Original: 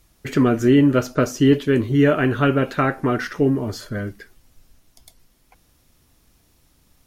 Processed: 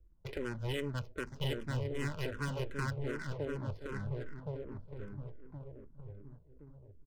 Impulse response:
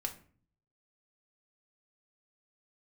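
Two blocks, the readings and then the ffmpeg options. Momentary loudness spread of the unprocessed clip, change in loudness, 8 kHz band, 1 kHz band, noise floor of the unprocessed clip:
13 LU, −20.5 dB, −17.0 dB, −20.0 dB, −60 dBFS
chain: -filter_complex "[0:a]aeval=exprs='if(lt(val(0),0),0.447*val(0),val(0))':channel_layout=same,acrossover=split=230|1800[link_01][link_02][link_03];[link_02]acompressor=threshold=-34dB:ratio=6[link_04];[link_01][link_04][link_03]amix=inputs=3:normalize=0,aeval=exprs='0.251*(cos(1*acos(clip(val(0)/0.251,-1,1)))-cos(1*PI/2))+0.0708*(cos(4*acos(clip(val(0)/0.251,-1,1)))-cos(4*PI/2))':channel_layout=same,lowshelf=frequency=320:gain=7.5,aecho=1:1:2:0.57,asplit=2[link_05][link_06];[link_06]adelay=1069,lowpass=frequency=950:poles=1,volume=-3dB,asplit=2[link_07][link_08];[link_08]adelay=1069,lowpass=frequency=950:poles=1,volume=0.46,asplit=2[link_09][link_10];[link_10]adelay=1069,lowpass=frequency=950:poles=1,volume=0.46,asplit=2[link_11][link_12];[link_12]adelay=1069,lowpass=frequency=950:poles=1,volume=0.46,asplit=2[link_13][link_14];[link_14]adelay=1069,lowpass=frequency=950:poles=1,volume=0.46,asplit=2[link_15][link_16];[link_16]adelay=1069,lowpass=frequency=950:poles=1,volume=0.46[link_17];[link_05][link_07][link_09][link_11][link_13][link_15][link_17]amix=inputs=7:normalize=0,adynamicsmooth=sensitivity=5.5:basefreq=520,equalizer=frequency=120:width_type=o:width=0.8:gain=-4.5,asoftclip=type=tanh:threshold=-14dB,asplit=2[link_18][link_19];[link_19]afreqshift=-2.6[link_20];[link_18][link_20]amix=inputs=2:normalize=1,volume=-9dB"

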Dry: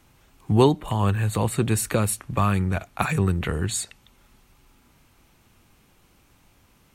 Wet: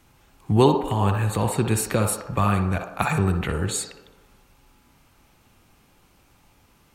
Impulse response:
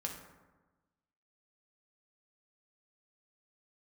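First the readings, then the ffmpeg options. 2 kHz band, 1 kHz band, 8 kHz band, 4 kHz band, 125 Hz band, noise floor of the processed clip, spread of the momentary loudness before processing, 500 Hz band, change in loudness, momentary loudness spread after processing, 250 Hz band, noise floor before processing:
+1.0 dB, +2.5 dB, 0.0 dB, +0.5 dB, 0.0 dB, −59 dBFS, 8 LU, +1.0 dB, +0.5 dB, 7 LU, +0.5 dB, −60 dBFS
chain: -filter_complex "[0:a]asplit=2[link_01][link_02];[link_02]highpass=390,equalizer=frequency=800:width_type=q:width=4:gain=5,equalizer=frequency=2000:width_type=q:width=4:gain=-10,equalizer=frequency=3400:width_type=q:width=4:gain=-8,equalizer=frequency=5000:width_type=q:width=4:gain=6,lowpass=frequency=6300:width=0.5412,lowpass=frequency=6300:width=1.3066[link_03];[1:a]atrim=start_sample=2205,lowpass=4200,adelay=60[link_04];[link_03][link_04]afir=irnorm=-1:irlink=0,volume=-3.5dB[link_05];[link_01][link_05]amix=inputs=2:normalize=0"

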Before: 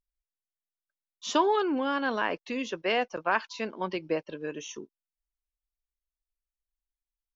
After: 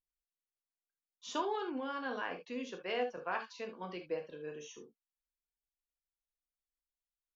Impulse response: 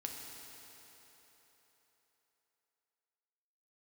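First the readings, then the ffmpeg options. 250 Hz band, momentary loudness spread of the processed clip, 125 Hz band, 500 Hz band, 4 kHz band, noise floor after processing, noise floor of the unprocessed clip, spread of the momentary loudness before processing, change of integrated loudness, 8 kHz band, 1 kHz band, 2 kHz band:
−11.0 dB, 10 LU, −9.5 dB, −9.0 dB, −10.5 dB, below −85 dBFS, below −85 dBFS, 13 LU, −10.0 dB, can't be measured, −10.5 dB, −10.5 dB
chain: -filter_complex "[1:a]atrim=start_sample=2205,atrim=end_sample=6174,asetrate=74970,aresample=44100[link_01];[0:a][link_01]afir=irnorm=-1:irlink=0,volume=-3.5dB"

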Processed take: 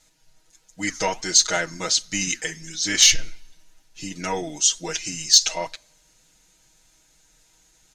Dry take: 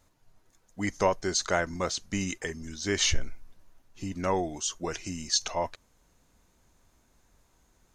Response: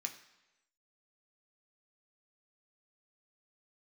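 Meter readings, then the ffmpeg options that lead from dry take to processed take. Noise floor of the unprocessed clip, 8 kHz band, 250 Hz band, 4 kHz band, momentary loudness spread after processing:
−68 dBFS, +13.5 dB, +0.5 dB, +12.5 dB, 16 LU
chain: -filter_complex "[0:a]lowpass=3800,bandreject=frequency=1100:width=5.7,aecho=1:1:6.3:0.99,acontrast=87,crystalizer=i=3.5:c=0,flanger=delay=0.9:depth=7.8:regen=-86:speed=1.4:shape=sinusoidal,crystalizer=i=3.5:c=0,asplit=2[link_01][link_02];[1:a]atrim=start_sample=2205[link_03];[link_02][link_03]afir=irnorm=-1:irlink=0,volume=-13dB[link_04];[link_01][link_04]amix=inputs=2:normalize=0,volume=-6dB"

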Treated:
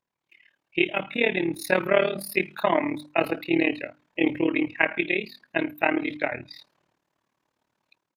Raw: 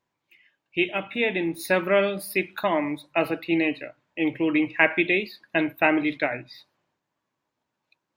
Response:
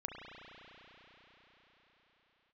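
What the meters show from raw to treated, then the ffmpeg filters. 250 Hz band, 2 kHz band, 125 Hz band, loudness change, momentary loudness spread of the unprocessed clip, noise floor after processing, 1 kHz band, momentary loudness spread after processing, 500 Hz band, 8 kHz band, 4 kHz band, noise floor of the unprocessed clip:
−1.0 dB, −1.5 dB, −1.0 dB, −1.0 dB, 7 LU, −83 dBFS, −0.5 dB, 7 LU, −0.5 dB, 0.0 dB, −0.5 dB, −82 dBFS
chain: -af "aresample=32000,aresample=44100,dynaudnorm=framelen=150:gausssize=5:maxgain=10.5dB,tremolo=f=37:d=0.889,bandreject=frequency=50:width_type=h:width=6,bandreject=frequency=100:width_type=h:width=6,bandreject=frequency=150:width_type=h:width=6,bandreject=frequency=200:width_type=h:width=6,bandreject=frequency=250:width_type=h:width=6,bandreject=frequency=300:width_type=h:width=6,volume=-2.5dB"

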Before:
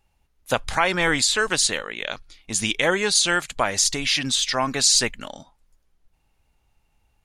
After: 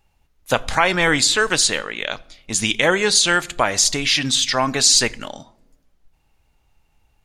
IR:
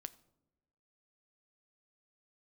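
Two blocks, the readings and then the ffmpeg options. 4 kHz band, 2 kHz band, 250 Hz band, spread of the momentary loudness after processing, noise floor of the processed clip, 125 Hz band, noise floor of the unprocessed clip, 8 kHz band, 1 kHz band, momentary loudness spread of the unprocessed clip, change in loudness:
+4.0 dB, +4.0 dB, +4.0 dB, 12 LU, −65 dBFS, +4.5 dB, −68 dBFS, +3.5 dB, +4.0 dB, 13 LU, +3.5 dB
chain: -filter_complex "[0:a]equalizer=frequency=9900:width=4.2:gain=-4,asplit=2[link_01][link_02];[1:a]atrim=start_sample=2205[link_03];[link_02][link_03]afir=irnorm=-1:irlink=0,volume=10.5dB[link_04];[link_01][link_04]amix=inputs=2:normalize=0,volume=-5.5dB"

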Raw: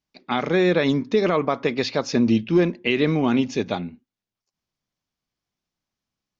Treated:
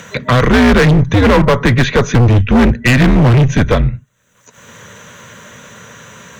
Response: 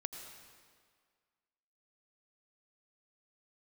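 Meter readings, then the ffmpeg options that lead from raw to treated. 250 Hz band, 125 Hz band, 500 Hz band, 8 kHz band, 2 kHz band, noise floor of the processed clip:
+9.0 dB, +19.0 dB, +7.5 dB, can't be measured, +13.0 dB, −54 dBFS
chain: -filter_complex "[0:a]superequalizer=7b=0.398:9b=0.355:11b=1.78:14b=0.282:15b=2.82,afreqshift=-120,highshelf=frequency=2100:gain=-10.5,acrossover=split=120[link_01][link_02];[link_02]acompressor=mode=upward:threshold=-27dB:ratio=2.5[link_03];[link_01][link_03]amix=inputs=2:normalize=0,apsyclip=13.5dB,acrossover=split=5300[link_04][link_05];[link_05]acompressor=threshold=-52dB:ratio=4:attack=1:release=60[link_06];[link_04][link_06]amix=inputs=2:normalize=0,asoftclip=type=hard:threshold=-12.5dB,volume=6dB"

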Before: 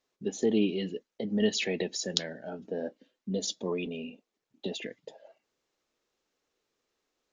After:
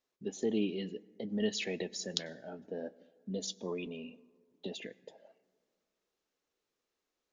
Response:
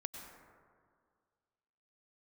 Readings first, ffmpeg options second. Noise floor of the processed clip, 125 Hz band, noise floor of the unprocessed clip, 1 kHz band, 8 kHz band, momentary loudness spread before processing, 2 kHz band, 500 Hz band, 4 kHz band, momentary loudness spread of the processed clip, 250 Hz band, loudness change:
below −85 dBFS, −6.0 dB, below −85 dBFS, −6.0 dB, −6.0 dB, 15 LU, −6.0 dB, −6.0 dB, −6.0 dB, 14 LU, −6.0 dB, −6.0 dB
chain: -filter_complex "[0:a]asplit=2[link_01][link_02];[1:a]atrim=start_sample=2205[link_03];[link_02][link_03]afir=irnorm=-1:irlink=0,volume=-14.5dB[link_04];[link_01][link_04]amix=inputs=2:normalize=0,volume=-7dB"

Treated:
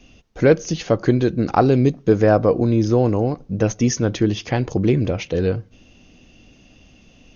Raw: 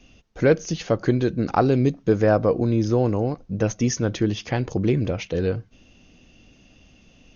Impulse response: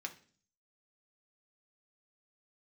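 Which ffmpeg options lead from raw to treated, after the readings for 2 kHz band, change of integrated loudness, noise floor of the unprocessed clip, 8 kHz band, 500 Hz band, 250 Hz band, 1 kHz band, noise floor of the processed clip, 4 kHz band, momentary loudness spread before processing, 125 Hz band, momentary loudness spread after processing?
+2.5 dB, +3.5 dB, −55 dBFS, can't be measured, +3.5 dB, +3.5 dB, +3.5 dB, −51 dBFS, +3.0 dB, 7 LU, +3.5 dB, 7 LU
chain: -filter_complex "[0:a]asplit=2[link_01][link_02];[link_02]lowpass=frequency=1400:width=0.5412,lowpass=frequency=1400:width=1.3066[link_03];[1:a]atrim=start_sample=2205[link_04];[link_03][link_04]afir=irnorm=-1:irlink=0,volume=-13.5dB[link_05];[link_01][link_05]amix=inputs=2:normalize=0,volume=3dB"

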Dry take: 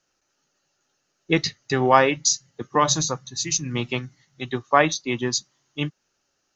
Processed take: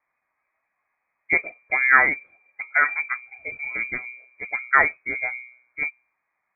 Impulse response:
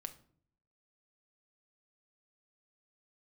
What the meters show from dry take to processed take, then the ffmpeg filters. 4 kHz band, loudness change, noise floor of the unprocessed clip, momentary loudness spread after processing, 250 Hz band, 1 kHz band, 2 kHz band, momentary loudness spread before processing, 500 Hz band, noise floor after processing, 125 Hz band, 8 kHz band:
below −40 dB, +0.5 dB, −74 dBFS, 19 LU, −16.0 dB, −4.0 dB, +9.0 dB, 14 LU, −12.5 dB, −78 dBFS, below −20 dB, can't be measured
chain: -af "bandreject=frequency=123.6:width_type=h:width=4,bandreject=frequency=247.2:width_type=h:width=4,bandreject=frequency=370.8:width_type=h:width=4,lowpass=frequency=2100:width_type=q:width=0.5098,lowpass=frequency=2100:width_type=q:width=0.6013,lowpass=frequency=2100:width_type=q:width=0.9,lowpass=frequency=2100:width_type=q:width=2.563,afreqshift=-2500"

